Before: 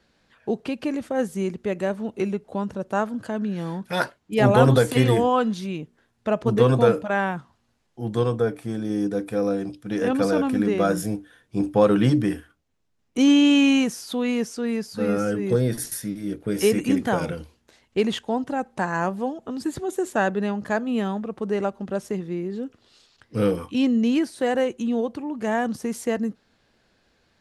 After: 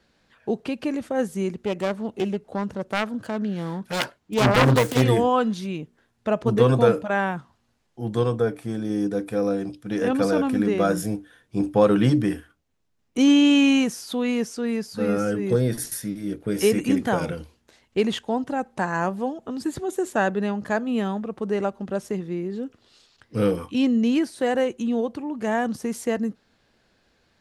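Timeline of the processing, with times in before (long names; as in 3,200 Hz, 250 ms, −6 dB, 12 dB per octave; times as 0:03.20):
0:01.64–0:05.02: phase distortion by the signal itself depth 0.77 ms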